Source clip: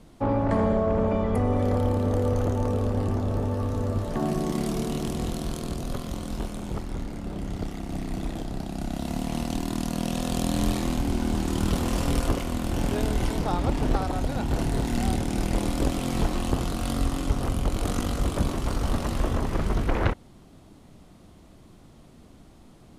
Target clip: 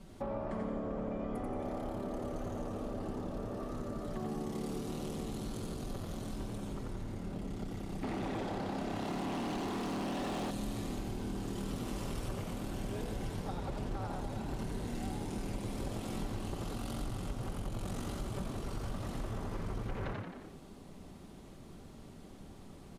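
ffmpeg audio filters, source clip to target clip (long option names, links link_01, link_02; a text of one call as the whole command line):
ffmpeg -i in.wav -filter_complex "[0:a]aecho=1:1:5.2:1,asplit=6[link_01][link_02][link_03][link_04][link_05][link_06];[link_02]adelay=88,afreqshift=72,volume=-4dB[link_07];[link_03]adelay=176,afreqshift=144,volume=-12dB[link_08];[link_04]adelay=264,afreqshift=216,volume=-19.9dB[link_09];[link_05]adelay=352,afreqshift=288,volume=-27.9dB[link_10];[link_06]adelay=440,afreqshift=360,volume=-35.8dB[link_11];[link_01][link_07][link_08][link_09][link_10][link_11]amix=inputs=6:normalize=0,asettb=1/sr,asplit=3[link_12][link_13][link_14];[link_12]atrim=end=8.034[link_15];[link_13]atrim=start=8.03:end=10.51,asetpts=PTS-STARTPTS,afade=type=in:duration=0.004:curve=qsin,afade=type=out:start_time=2.476:duration=0.004:curve=qsin,asplit=2[link_16][link_17];[link_17]highpass=frequency=720:poles=1,volume=27dB,asoftclip=type=tanh:threshold=-9dB[link_18];[link_16][link_18]amix=inputs=2:normalize=0,lowpass=frequency=1400:poles=1,volume=-6dB[link_19];[link_14]atrim=start=10.506[link_20];[link_15][link_19]acrossfade=duration=0.004:curve1=hsin:curve2=qsin[link_21];[link_21][link_20]acrossfade=duration=0.004:curve1=qsin:curve2=hsin,acompressor=threshold=-34dB:ratio=3,volume=-5.5dB" out.wav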